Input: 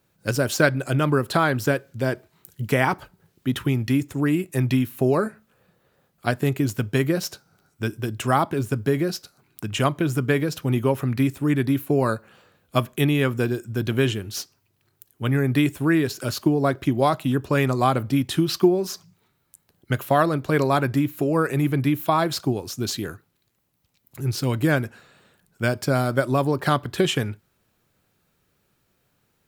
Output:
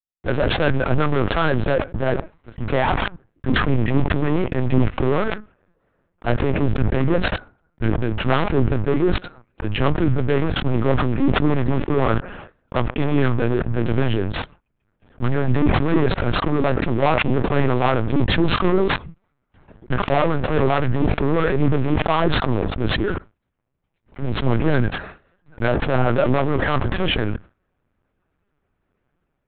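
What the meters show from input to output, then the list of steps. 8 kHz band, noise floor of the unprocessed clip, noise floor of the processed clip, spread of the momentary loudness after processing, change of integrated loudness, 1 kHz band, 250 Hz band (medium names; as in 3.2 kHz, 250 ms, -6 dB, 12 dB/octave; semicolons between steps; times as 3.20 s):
under -40 dB, -69 dBFS, -73 dBFS, 9 LU, +2.0 dB, +2.0 dB, +1.5 dB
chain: gate with hold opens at -43 dBFS; low-pass 1.9 kHz 12 dB/octave; waveshaping leveller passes 5; flange 1.3 Hz, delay 4.7 ms, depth 8.2 ms, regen +12%; LPC vocoder at 8 kHz pitch kept; decay stretcher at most 25 dB/s; trim -7 dB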